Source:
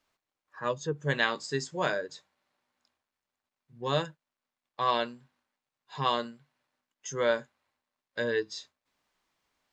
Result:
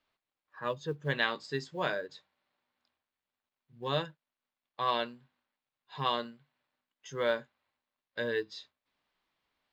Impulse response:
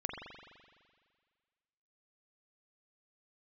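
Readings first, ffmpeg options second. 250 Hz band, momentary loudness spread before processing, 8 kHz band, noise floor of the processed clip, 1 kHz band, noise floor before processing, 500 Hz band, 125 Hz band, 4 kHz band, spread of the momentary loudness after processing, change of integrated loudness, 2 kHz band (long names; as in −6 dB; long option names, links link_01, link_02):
−3.5 dB, 15 LU, below −10 dB, below −85 dBFS, −3.0 dB, below −85 dBFS, −3.5 dB, −3.5 dB, −2.0 dB, 15 LU, −3.0 dB, −3.0 dB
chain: -af "acrusher=bits=8:mode=log:mix=0:aa=0.000001,highshelf=frequency=5100:width_type=q:width=1.5:gain=-8.5,volume=-3.5dB"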